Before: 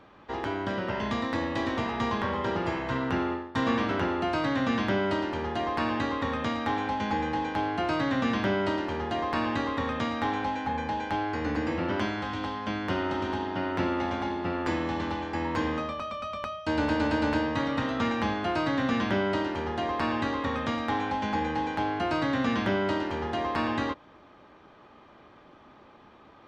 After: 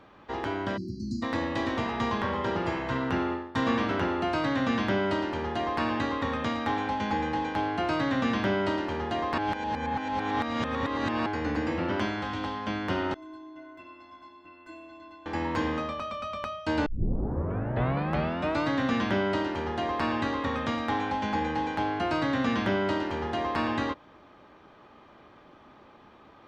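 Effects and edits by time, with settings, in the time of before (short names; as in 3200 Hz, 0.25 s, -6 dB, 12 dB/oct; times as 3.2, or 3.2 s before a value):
0.77–1.23 spectral delete 370–4000 Hz
9.38–11.26 reverse
13.14–15.26 metallic resonator 310 Hz, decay 0.47 s, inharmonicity 0.03
16.86 tape start 1.83 s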